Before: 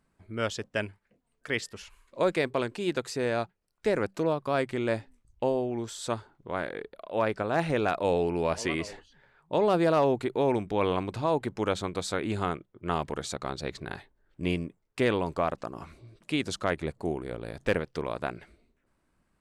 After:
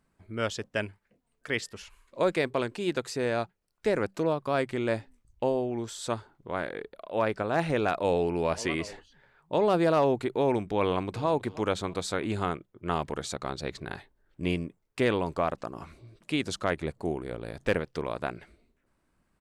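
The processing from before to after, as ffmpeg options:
ffmpeg -i in.wav -filter_complex "[0:a]asplit=2[link_01][link_02];[link_02]afade=type=in:start_time=10.82:duration=0.01,afade=type=out:start_time=11.29:duration=0.01,aecho=0:1:320|640|960|1280:0.125893|0.0566516|0.0254932|0.011472[link_03];[link_01][link_03]amix=inputs=2:normalize=0" out.wav

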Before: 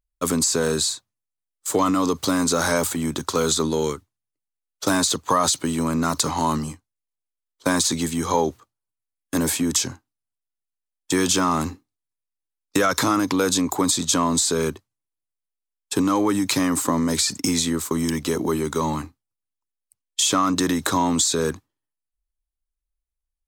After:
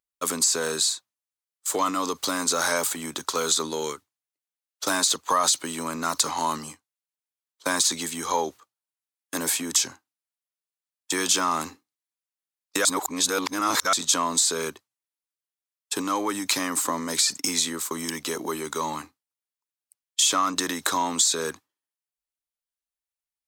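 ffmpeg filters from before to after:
ffmpeg -i in.wav -filter_complex "[0:a]asplit=3[link_01][link_02][link_03];[link_01]atrim=end=12.852[link_04];[link_02]atrim=start=12.848:end=13.932,asetpts=PTS-STARTPTS,areverse[link_05];[link_03]atrim=start=13.928[link_06];[link_04][link_05]acrossfade=duration=0.004:curve1=hsin:curve2=hsin[link_07];[link_07][link_06]acrossfade=duration=0.004:curve1=hsin:curve2=hsin,highpass=frequency=850:poles=1" out.wav

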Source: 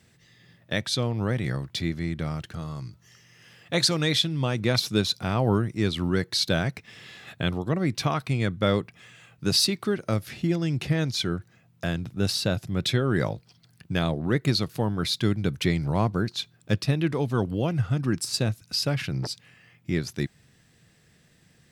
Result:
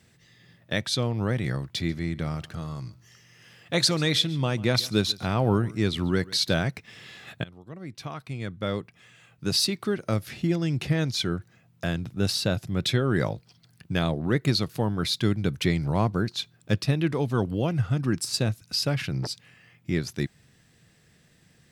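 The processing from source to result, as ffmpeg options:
ffmpeg -i in.wav -filter_complex "[0:a]asettb=1/sr,asplit=3[link_01][link_02][link_03];[link_01]atrim=end=1.684[link_04];[link_02]atrim=start=1.68:end=6.54,asetpts=PTS-STARTPTS,afade=type=in:duration=0.004:curve=qsin,afade=type=out:start_time=4.856:duration=0.004:curve=qsin,aecho=1:1:141:0.0891,atrim=end_sample=214326[link_05];[link_03]atrim=start=6.536[link_06];[link_04][link_05]acrossfade=duration=0.004:curve1=hsin:curve2=qsin[link_07];[link_07][link_06]acrossfade=duration=0.004:curve1=qsin:curve2=hsin,asplit=2[link_08][link_09];[link_08]atrim=end=7.44,asetpts=PTS-STARTPTS,afade=type=out:start_time=7.436:duration=0.004:curve=hsin:silence=0.0668344[link_10];[link_09]atrim=start=7.44,asetpts=PTS-STARTPTS,afade=type=in:duration=2.78:silence=0.0668344[link_11];[link_10][link_11]concat=n=2:v=0:a=1" out.wav

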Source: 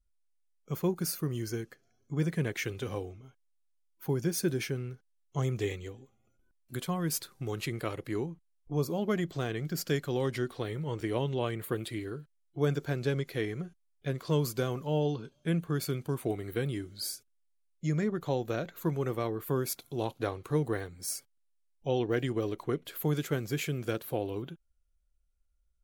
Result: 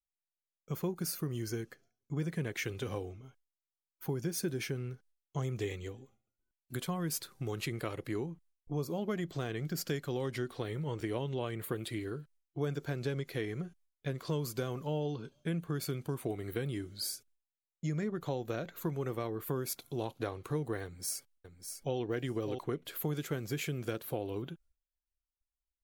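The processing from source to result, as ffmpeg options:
ffmpeg -i in.wav -filter_complex "[0:a]asplit=2[link_01][link_02];[link_02]afade=type=in:start_time=20.84:duration=0.01,afade=type=out:start_time=21.98:duration=0.01,aecho=0:1:600|1200:0.375837|0.0375837[link_03];[link_01][link_03]amix=inputs=2:normalize=0,acompressor=threshold=-33dB:ratio=2.5,agate=range=-33dB:threshold=-59dB:ratio=3:detection=peak" out.wav

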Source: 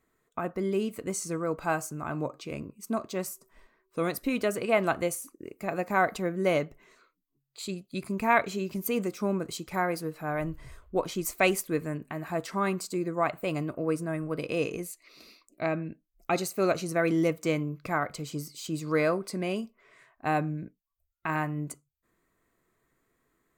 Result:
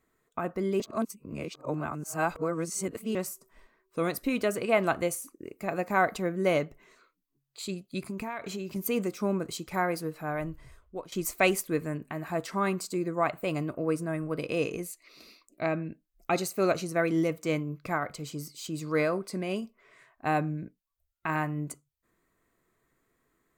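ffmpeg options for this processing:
ffmpeg -i in.wav -filter_complex "[0:a]asettb=1/sr,asplit=3[link_01][link_02][link_03];[link_01]atrim=end=8.054[link_04];[link_02]atrim=start=8.05:end=8.76,asetpts=PTS-STARTPTS,afade=type=in:duration=0.004:curve=qsin,afade=type=out:start_time=0.706:duration=0.004:curve=qsin,acompressor=threshold=-31dB:ratio=10:attack=3.2:release=140:knee=1:detection=peak[link_05];[link_03]atrim=start=8.756[link_06];[link_04][link_05]acrossfade=duration=0.004:curve1=hsin:curve2=qsin[link_07];[link_07][link_06]acrossfade=duration=0.004:curve1=qsin:curve2=hsin,asettb=1/sr,asplit=3[link_08][link_09][link_10];[link_08]atrim=end=16.824[link_11];[link_09]atrim=start=16.82:end=19.62,asetpts=PTS-STARTPTS,afade=type=in:duration=0.004:curve=qsin,afade=type=out:start_time=2.796:duration=0.004:curve=qsin,tremolo=f=5.5:d=0.29[link_12];[link_10]atrim=start=19.616[link_13];[link_11][link_12]acrossfade=duration=0.004:curve1=hsin:curve2=qsin[link_14];[link_14][link_13]acrossfade=duration=0.004:curve1=qsin:curve2=hsin,asplit=4[link_15][link_16][link_17][link_18];[link_15]atrim=end=0.802[link_19];[link_16]atrim=start=0.798:end=3.152,asetpts=PTS-STARTPTS,areverse[link_20];[link_17]atrim=start=3.148:end=11.12,asetpts=PTS-STARTPTS,afade=type=out:start_time=7.012:duration=0.96:silence=0.188365[link_21];[link_18]atrim=start=11.12,asetpts=PTS-STARTPTS,afade=type=in:duration=0.004:curve=hsin:silence=0.188365[link_22];[link_19][link_20]acrossfade=duration=0.004:curve1=hsin:curve2=hsin[link_23];[link_21][link_22]concat=n=2:v=0:a=1[link_24];[link_23][link_24]acrossfade=duration=0.004:curve1=hsin:curve2=hsin" out.wav

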